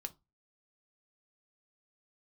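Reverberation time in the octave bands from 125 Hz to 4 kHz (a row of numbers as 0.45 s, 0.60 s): 0.40 s, 0.30 s, 0.20 s, 0.25 s, 0.15 s, 0.20 s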